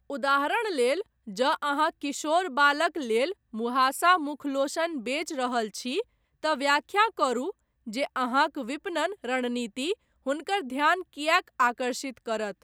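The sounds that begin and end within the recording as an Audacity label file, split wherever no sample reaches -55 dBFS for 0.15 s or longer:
1.270000	3.330000	sound
3.530000	6.030000	sound
6.430000	7.520000	sound
7.860000	9.950000	sound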